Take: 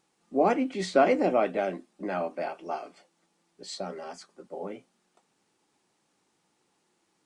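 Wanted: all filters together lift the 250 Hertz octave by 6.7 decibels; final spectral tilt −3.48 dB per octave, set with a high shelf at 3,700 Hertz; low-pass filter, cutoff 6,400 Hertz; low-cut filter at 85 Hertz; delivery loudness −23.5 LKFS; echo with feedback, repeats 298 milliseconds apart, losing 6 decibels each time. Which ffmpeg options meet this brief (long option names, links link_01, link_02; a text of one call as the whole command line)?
ffmpeg -i in.wav -af "highpass=85,lowpass=6400,equalizer=frequency=250:width_type=o:gain=8,highshelf=frequency=3700:gain=-7.5,aecho=1:1:298|596|894|1192|1490|1788:0.501|0.251|0.125|0.0626|0.0313|0.0157,volume=1dB" out.wav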